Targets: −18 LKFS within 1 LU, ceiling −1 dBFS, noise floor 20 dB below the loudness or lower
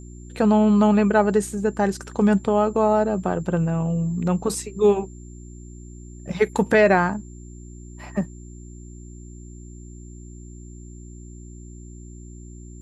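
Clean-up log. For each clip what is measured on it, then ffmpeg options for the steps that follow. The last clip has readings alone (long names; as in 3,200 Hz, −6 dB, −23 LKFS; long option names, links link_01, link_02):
mains hum 60 Hz; hum harmonics up to 360 Hz; level of the hum −38 dBFS; interfering tone 7,300 Hz; level of the tone −51 dBFS; integrated loudness −21.0 LKFS; sample peak −4.5 dBFS; target loudness −18.0 LKFS
→ -af "bandreject=frequency=60:width_type=h:width=4,bandreject=frequency=120:width_type=h:width=4,bandreject=frequency=180:width_type=h:width=4,bandreject=frequency=240:width_type=h:width=4,bandreject=frequency=300:width_type=h:width=4,bandreject=frequency=360:width_type=h:width=4"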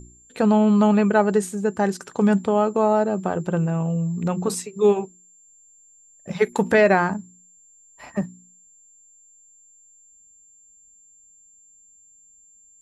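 mains hum none found; interfering tone 7,300 Hz; level of the tone −51 dBFS
→ -af "bandreject=frequency=7300:width=30"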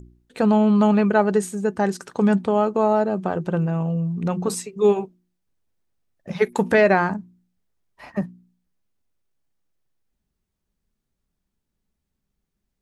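interfering tone none found; integrated loudness −21.0 LKFS; sample peak −5.0 dBFS; target loudness −18.0 LKFS
→ -af "volume=3dB"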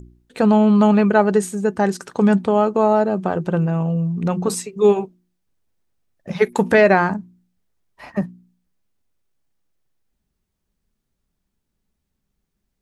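integrated loudness −18.0 LKFS; sample peak −2.0 dBFS; background noise floor −76 dBFS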